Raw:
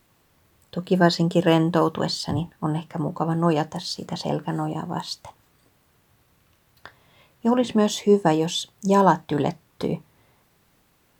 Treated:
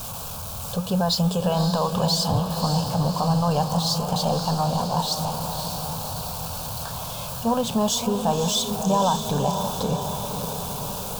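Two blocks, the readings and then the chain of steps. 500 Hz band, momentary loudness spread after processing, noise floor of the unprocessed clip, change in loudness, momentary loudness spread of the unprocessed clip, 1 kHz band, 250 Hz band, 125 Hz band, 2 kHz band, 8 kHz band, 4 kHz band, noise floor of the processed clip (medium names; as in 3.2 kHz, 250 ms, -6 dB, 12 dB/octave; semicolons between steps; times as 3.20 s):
-2.5 dB, 8 LU, -63 dBFS, -1.0 dB, 11 LU, +1.5 dB, -1.5 dB, +2.5 dB, -7.0 dB, +9.0 dB, +5.0 dB, -33 dBFS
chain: jump at every zero crossing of -30.5 dBFS; peak limiter -13 dBFS, peak gain reduction 10 dB; static phaser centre 810 Hz, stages 4; echo that smears into a reverb 565 ms, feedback 64%, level -7 dB; trim +4.5 dB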